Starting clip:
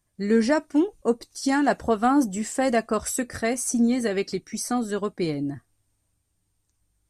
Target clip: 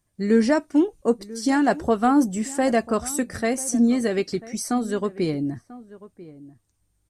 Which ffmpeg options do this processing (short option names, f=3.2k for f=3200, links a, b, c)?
-filter_complex "[0:a]equalizer=f=220:w=0.39:g=2.5,asplit=2[a][b];[b]adelay=991.3,volume=-18dB,highshelf=f=4k:g=-22.3[c];[a][c]amix=inputs=2:normalize=0"